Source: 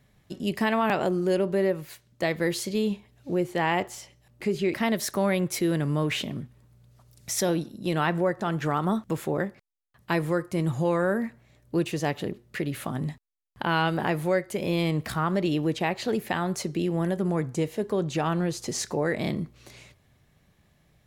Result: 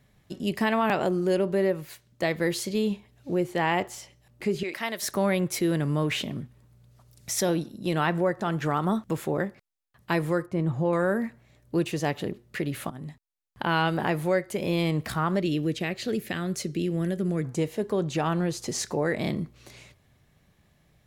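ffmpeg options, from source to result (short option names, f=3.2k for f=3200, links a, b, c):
-filter_complex "[0:a]asettb=1/sr,asplit=3[a][b][c];[a]atrim=end=4.634[d];[b]atrim=start=4.63:end=5.03,asetpts=PTS-STARTPTS,afade=t=in:d=0.004:c=qsin,afade=t=out:st=0.396:d=0.004:c=qsin,highpass=f=980:p=1[e];[c]atrim=start=5.026[f];[d][e]acrossfade=d=0.004:c1=hsin:c2=qsin[g];[g][f]acrossfade=d=0.004:c1=qsin:c2=hsin,asettb=1/sr,asplit=3[h][i][j];[h]atrim=end=10.464[k];[i]atrim=start=10.46:end=10.93,asetpts=PTS-STARTPTS,afade=t=in:d=0.004:c=qsin,afade=t=out:st=0.466:d=0.004:c=qsin,lowpass=f=1.3k:p=1[l];[j]atrim=start=10.926[m];[k][l]acrossfade=d=0.004:c1=hsin:c2=qsin[n];[n][m]acrossfade=d=0.004:c1=qsin:c2=hsin,asettb=1/sr,asplit=3[o][p][q];[o]atrim=end=15.404[r];[p]atrim=start=15.4:end=17.45,asetpts=PTS-STARTPTS,afade=t=in:d=0.004:c=qsin,afade=t=out:st=2.046:d=0.004:c=qsin,equalizer=f=890:w=1.8:g=-15[s];[q]atrim=start=17.446[t];[r][s]acrossfade=d=0.004:c1=hsin:c2=qsin[u];[u][t]acrossfade=d=0.004:c1=qsin:c2=hsin,asplit=2[v][w];[v]atrim=end=12.9,asetpts=PTS-STARTPTS,afade=t=out:st=12.896:d=0.004:c=hsin:silence=0.237137[x];[w]atrim=start=12.9,asetpts=PTS-STARTPTS,afade=t=in:d=0.72:silence=0.237137[y];[x][y]concat=n=2:v=0:a=1"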